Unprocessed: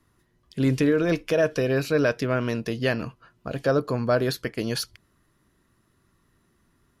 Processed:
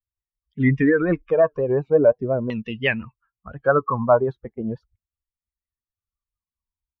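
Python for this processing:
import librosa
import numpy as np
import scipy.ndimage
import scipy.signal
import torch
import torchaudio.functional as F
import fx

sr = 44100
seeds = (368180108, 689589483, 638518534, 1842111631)

y = fx.bin_expand(x, sr, power=2.0)
y = fx.vibrato(y, sr, rate_hz=5.7, depth_cents=83.0)
y = fx.filter_lfo_lowpass(y, sr, shape='saw_down', hz=0.4, low_hz=520.0, high_hz=3200.0, q=4.7)
y = fx.high_shelf(y, sr, hz=3300.0, db=-11.0)
y = y * 10.0 ** (5.5 / 20.0)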